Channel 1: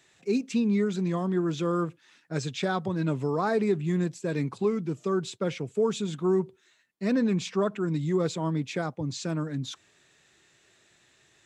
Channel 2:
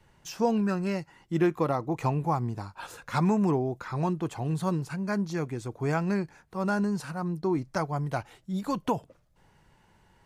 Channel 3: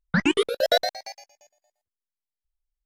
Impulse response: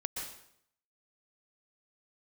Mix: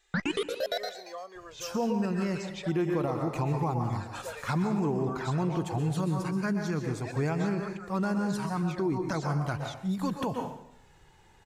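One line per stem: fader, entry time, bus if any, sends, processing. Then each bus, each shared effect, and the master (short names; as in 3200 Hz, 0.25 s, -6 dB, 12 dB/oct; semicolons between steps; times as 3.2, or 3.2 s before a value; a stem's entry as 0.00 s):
-4.0 dB, 0.00 s, bus A, no send, HPF 460 Hz 24 dB/oct
+0.5 dB, 1.35 s, bus A, send -5 dB, dry
-0.5 dB, 0.00 s, no bus, send -20.5 dB, auto duck -17 dB, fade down 1.20 s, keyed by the first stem
bus A: 0.0 dB, envelope flanger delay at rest 2.5 ms, full sweep at -21 dBFS; compressor, threshold -31 dBFS, peak gain reduction 11 dB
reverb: on, RT60 0.70 s, pre-delay 0.113 s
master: limiter -20.5 dBFS, peak gain reduction 7.5 dB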